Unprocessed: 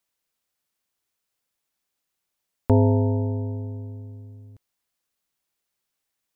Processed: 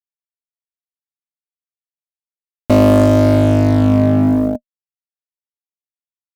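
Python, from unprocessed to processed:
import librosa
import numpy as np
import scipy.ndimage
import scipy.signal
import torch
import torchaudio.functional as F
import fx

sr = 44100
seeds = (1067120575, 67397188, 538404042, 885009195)

y = fx.leveller(x, sr, passes=3)
y = fx.fuzz(y, sr, gain_db=35.0, gate_db=-38.0)
y = fx.small_body(y, sr, hz=(240.0, 610.0), ring_ms=55, db=18)
y = y * 10.0 ** (-2.5 / 20.0)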